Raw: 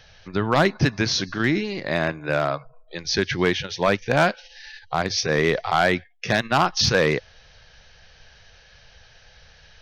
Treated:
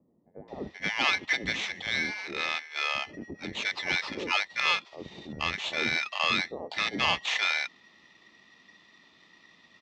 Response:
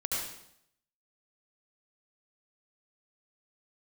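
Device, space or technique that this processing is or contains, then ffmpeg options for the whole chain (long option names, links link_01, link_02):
ring modulator pedal into a guitar cabinet: -filter_complex "[0:a]aeval=exprs='val(0)*sgn(sin(2*PI*1900*n/s))':channel_layout=same,highpass=94,equalizer=frequency=120:width_type=q:width=4:gain=-7,equalizer=frequency=820:width_type=q:width=4:gain=3,equalizer=frequency=1500:width_type=q:width=4:gain=-10,lowpass=frequency=4300:width=0.5412,lowpass=frequency=4300:width=1.3066,acrossover=split=560[link_01][link_02];[link_02]adelay=480[link_03];[link_01][link_03]amix=inputs=2:normalize=0,volume=-5dB"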